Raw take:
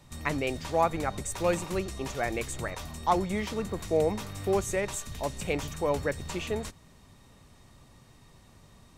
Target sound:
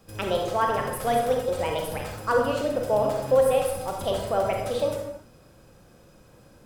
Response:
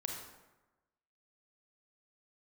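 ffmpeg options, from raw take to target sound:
-filter_complex "[0:a]asetrate=59535,aresample=44100,equalizer=f=530:t=o:w=0.51:g=12[s0];[1:a]atrim=start_sample=2205,afade=t=out:st=0.38:d=0.01,atrim=end_sample=17199[s1];[s0][s1]afir=irnorm=-1:irlink=0"

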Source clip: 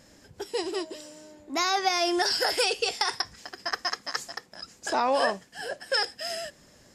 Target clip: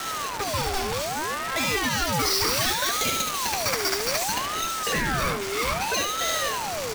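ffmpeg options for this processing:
-filter_complex "[0:a]aeval=exprs='val(0)+0.5*0.0473*sgn(val(0))':c=same,acompressor=threshold=0.0631:ratio=6,asplit=2[s0][s1];[s1]highpass=f=720:p=1,volume=7.94,asoftclip=type=tanh:threshold=0.501[s2];[s0][s2]amix=inputs=2:normalize=0,lowpass=f=4300:p=1,volume=0.501,acrusher=bits=4:dc=4:mix=0:aa=0.000001,asoftclip=type=tanh:threshold=0.119,asettb=1/sr,asplit=3[s3][s4][s5];[s3]atrim=end=2.124[s6];[s4]atrim=start=2.12:end=4.34,asetpts=PTS-STARTPTS,afade=t=in:d=0.004:c=qsin,afade=t=out:st=2.216:d=0.004:c=qsin,highshelf=f=6200:g=5.5[s7];[s5]atrim=start=4.336[s8];[s6][s7]acrossfade=d=0.004:c1=hsin:c2=qsin[s9];[s9][s8]acrossfade=d=0.004:c1=qsin:c2=hsin,aecho=1:1:72:0.531,aeval=exprs='val(0)*sin(2*PI*860*n/s+860*0.55/0.64*sin(2*PI*0.64*n/s))':c=same"

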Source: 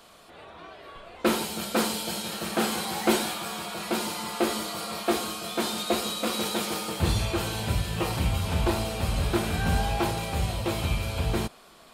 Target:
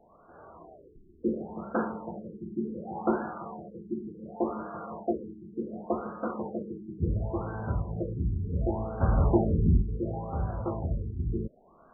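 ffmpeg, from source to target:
-filter_complex "[0:a]asettb=1/sr,asplit=3[s0][s1][s2];[s0]atrim=end=9.014[s3];[s1]atrim=start=9.01:end=9.82,asetpts=PTS-STARTPTS,afade=t=in:d=0.004:c=qsin,afade=t=out:st=0.806:d=0.004:c=qsin,acontrast=69[s4];[s2]atrim=start=9.816[s5];[s3][s4]acrossfade=d=0.004:c1=hsin:c2=qsin[s6];[s6][s5]acrossfade=d=0.004:c1=qsin:c2=hsin,aexciter=amount=15.9:drive=3.1:freq=4700,afftfilt=real='re*lt(b*sr/1024,400*pow(1700/400,0.5+0.5*sin(2*PI*0.69*pts/sr)))':imag='im*lt(b*sr/1024,400*pow(1700/400,0.5+0.5*sin(2*PI*0.69*pts/sr)))':win_size=1024:overlap=0.75,volume=0.708"

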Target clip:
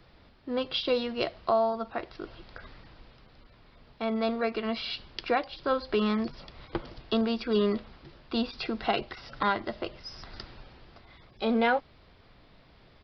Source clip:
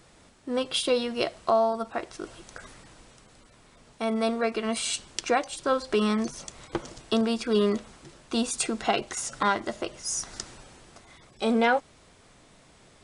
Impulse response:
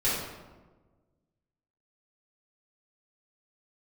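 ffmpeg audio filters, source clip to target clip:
-filter_complex "[0:a]aresample=11025,aresample=44100,acrossover=split=100|3000[s0][s1][s2];[s0]acontrast=75[s3];[s3][s1][s2]amix=inputs=3:normalize=0,volume=0.75"

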